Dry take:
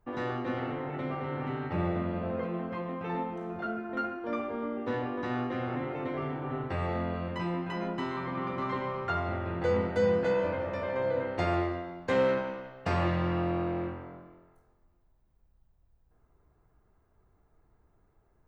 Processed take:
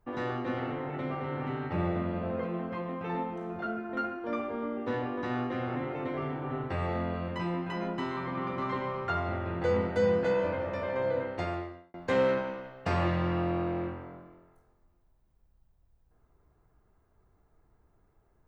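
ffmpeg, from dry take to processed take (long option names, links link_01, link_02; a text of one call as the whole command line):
ffmpeg -i in.wav -filter_complex "[0:a]asplit=2[link_01][link_02];[link_01]atrim=end=11.94,asetpts=PTS-STARTPTS,afade=type=out:start_time=11.13:duration=0.81[link_03];[link_02]atrim=start=11.94,asetpts=PTS-STARTPTS,afade=type=in:duration=0.004:curve=hsin[link_04];[link_03][link_04]concat=n=2:v=0:a=1" out.wav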